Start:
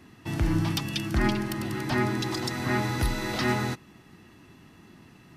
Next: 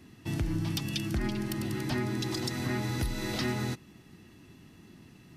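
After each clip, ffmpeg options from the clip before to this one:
-af "equalizer=f=1.1k:w=0.63:g=-7,acompressor=threshold=-27dB:ratio=6"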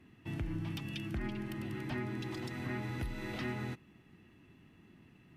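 -af "highshelf=f=3.6k:t=q:w=1.5:g=-8.5,volume=-7dB"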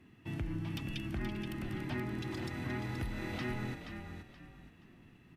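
-filter_complex "[0:a]asplit=5[a][b][c][d][e];[b]adelay=476,afreqshift=-37,volume=-7.5dB[f];[c]adelay=952,afreqshift=-74,volume=-18dB[g];[d]adelay=1428,afreqshift=-111,volume=-28.4dB[h];[e]adelay=1904,afreqshift=-148,volume=-38.9dB[i];[a][f][g][h][i]amix=inputs=5:normalize=0"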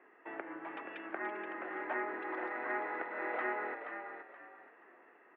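-af "asuperpass=centerf=900:order=8:qfactor=0.6,volume=9dB"

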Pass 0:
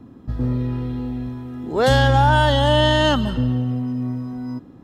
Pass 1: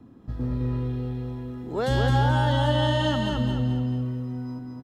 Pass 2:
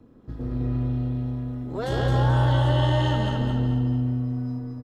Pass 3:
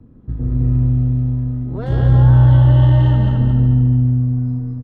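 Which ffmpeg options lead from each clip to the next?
-filter_complex "[0:a]acrossover=split=340[a][b];[b]acompressor=threshold=-19dB:ratio=6[c];[a][c]amix=inputs=2:normalize=0,asplit=2[d][e];[e]aecho=0:1:215|430|645|860|1075:0.668|0.281|0.118|0.0495|0.0208[f];[d][f]amix=inputs=2:normalize=0,volume=-6.5dB"
-filter_complex "[0:a]tremolo=f=220:d=0.75,asplit=2[a][b];[b]adelay=144,lowpass=f=1.6k:p=1,volume=-3dB,asplit=2[c][d];[d]adelay=144,lowpass=f=1.6k:p=1,volume=0.46,asplit=2[e][f];[f]adelay=144,lowpass=f=1.6k:p=1,volume=0.46,asplit=2[g][h];[h]adelay=144,lowpass=f=1.6k:p=1,volume=0.46,asplit=2[i][j];[j]adelay=144,lowpass=f=1.6k:p=1,volume=0.46,asplit=2[k][l];[l]adelay=144,lowpass=f=1.6k:p=1,volume=0.46[m];[a][c][e][g][i][k][m]amix=inputs=7:normalize=0"
-af "bass=f=250:g=14,treble=f=4k:g=-14,volume=-1.5dB"

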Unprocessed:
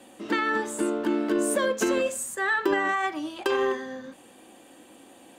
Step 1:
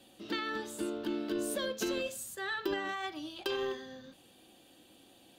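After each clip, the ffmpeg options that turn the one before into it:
-af "equalizer=f=250:t=o:w=1:g=-9,equalizer=f=500:t=o:w=1:g=-7,equalizer=f=1k:t=o:w=1:g=-11,equalizer=f=2k:t=o:w=1:g=-10,equalizer=f=4k:t=o:w=1:g=5,equalizer=f=8k:t=o:w=1:g=-12"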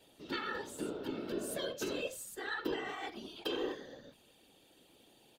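-af "aecho=1:1:2.2:0.3,afftfilt=real='hypot(re,im)*cos(2*PI*random(0))':imag='hypot(re,im)*sin(2*PI*random(1))':win_size=512:overlap=0.75,volume=2dB"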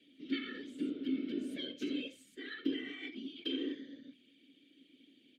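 -filter_complex "[0:a]asplit=3[a][b][c];[a]bandpass=f=270:t=q:w=8,volume=0dB[d];[b]bandpass=f=2.29k:t=q:w=8,volume=-6dB[e];[c]bandpass=f=3.01k:t=q:w=8,volume=-9dB[f];[d][e][f]amix=inputs=3:normalize=0,volume=11dB"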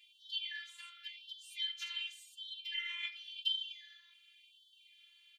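-af "afftfilt=real='hypot(re,im)*cos(PI*b)':imag='0':win_size=512:overlap=0.75,afftfilt=real='re*gte(b*sr/1024,920*pow(2900/920,0.5+0.5*sin(2*PI*0.91*pts/sr)))':imag='im*gte(b*sr/1024,920*pow(2900/920,0.5+0.5*sin(2*PI*0.91*pts/sr)))':win_size=1024:overlap=0.75,volume=10dB"

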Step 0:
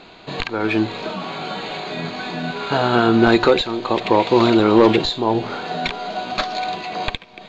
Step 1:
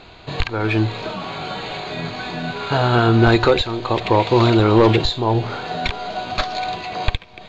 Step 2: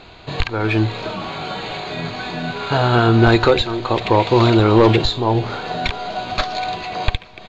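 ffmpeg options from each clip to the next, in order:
-af "lowshelf=f=140:t=q:w=1.5:g=9.5"
-af "aecho=1:1:433|866|1299:0.0794|0.0302|0.0115,volume=1dB"

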